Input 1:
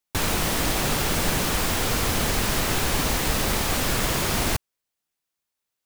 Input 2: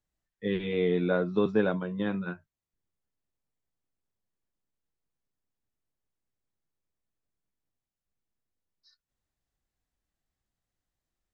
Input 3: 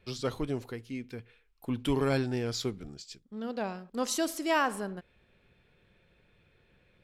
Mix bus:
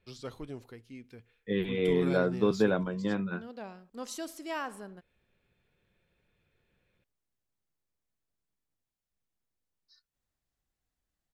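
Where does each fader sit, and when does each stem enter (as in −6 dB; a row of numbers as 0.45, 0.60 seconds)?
muted, −0.5 dB, −9.0 dB; muted, 1.05 s, 0.00 s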